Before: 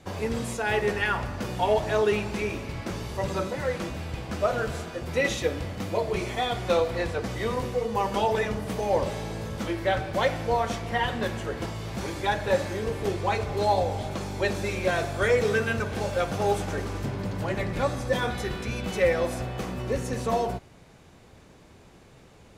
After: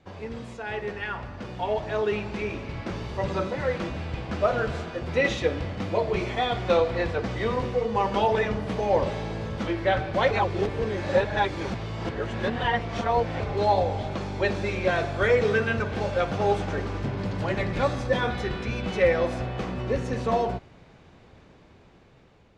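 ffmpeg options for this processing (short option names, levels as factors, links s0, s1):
-filter_complex "[0:a]asettb=1/sr,asplit=3[s0][s1][s2];[s0]atrim=end=17.174[s3];[s1]atrim=start=17.17:end=18.07,asetpts=PTS-STARTPTS,afade=t=in:d=0.004:c=qsin,afade=t=out:st=0.896:d=0.004:c=qsin,highshelf=f=4000:g=6[s4];[s2]atrim=start=18.066[s5];[s3][s4]acrossfade=d=0.004:c1=hsin:c2=qsin[s6];[s6][s5]acrossfade=d=0.004:c1=qsin:c2=hsin,asplit=3[s7][s8][s9];[s7]atrim=end=10.312[s10];[s8]atrim=start=10.308:end=13.402,asetpts=PTS-STARTPTS,areverse[s11];[s9]atrim=start=13.398[s12];[s10][s11]acrossfade=d=0.004:c1=hsin:c2=hsin[s13];[s13][s12]acrossfade=d=0.004:c1=hsin:c2=hsin,lowpass=4200,dynaudnorm=f=930:g=5:m=3.16,volume=0.447"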